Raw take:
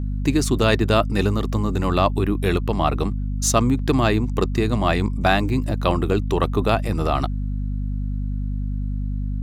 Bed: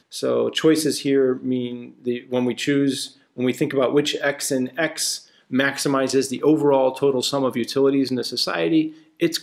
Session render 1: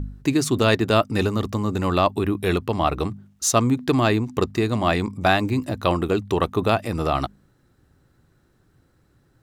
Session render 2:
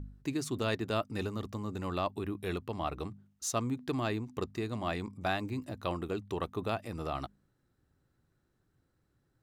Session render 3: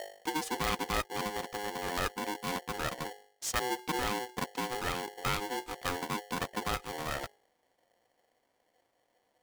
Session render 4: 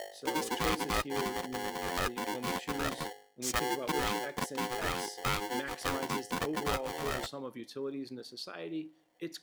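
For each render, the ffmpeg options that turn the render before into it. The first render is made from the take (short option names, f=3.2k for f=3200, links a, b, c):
-af "bandreject=f=50:t=h:w=4,bandreject=f=100:t=h:w=4,bandreject=f=150:t=h:w=4,bandreject=f=200:t=h:w=4,bandreject=f=250:t=h:w=4"
-af "volume=-14dB"
-af "aeval=exprs='val(0)*sgn(sin(2*PI*620*n/s))':c=same"
-filter_complex "[1:a]volume=-20.5dB[a];[0:a][a]amix=inputs=2:normalize=0"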